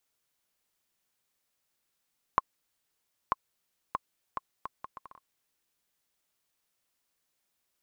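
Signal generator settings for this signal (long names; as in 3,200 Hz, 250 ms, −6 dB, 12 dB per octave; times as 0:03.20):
bouncing ball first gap 0.94 s, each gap 0.67, 1,070 Hz, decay 26 ms −9.5 dBFS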